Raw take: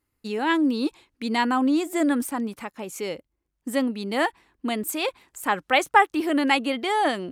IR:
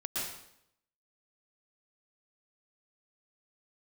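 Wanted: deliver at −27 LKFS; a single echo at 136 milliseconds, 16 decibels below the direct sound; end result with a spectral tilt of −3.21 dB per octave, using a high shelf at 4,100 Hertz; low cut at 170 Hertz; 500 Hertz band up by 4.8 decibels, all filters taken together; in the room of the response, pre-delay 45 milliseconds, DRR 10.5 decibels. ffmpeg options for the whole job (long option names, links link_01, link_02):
-filter_complex "[0:a]highpass=170,equalizer=frequency=500:width_type=o:gain=6,highshelf=frequency=4100:gain=8.5,aecho=1:1:136:0.158,asplit=2[link_01][link_02];[1:a]atrim=start_sample=2205,adelay=45[link_03];[link_02][link_03]afir=irnorm=-1:irlink=0,volume=-15dB[link_04];[link_01][link_04]amix=inputs=2:normalize=0,volume=-5.5dB"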